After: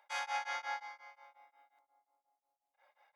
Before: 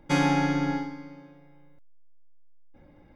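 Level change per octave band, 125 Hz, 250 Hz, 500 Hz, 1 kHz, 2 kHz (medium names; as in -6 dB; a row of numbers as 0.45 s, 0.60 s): under -40 dB, under -40 dB, -20.5 dB, -9.0 dB, -8.0 dB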